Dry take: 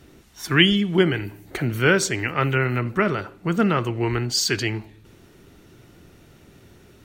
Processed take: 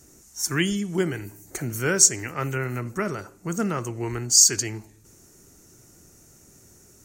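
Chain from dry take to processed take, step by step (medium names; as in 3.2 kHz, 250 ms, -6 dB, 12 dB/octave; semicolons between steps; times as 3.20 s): resonant high shelf 4.8 kHz +12 dB, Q 3; trim -6 dB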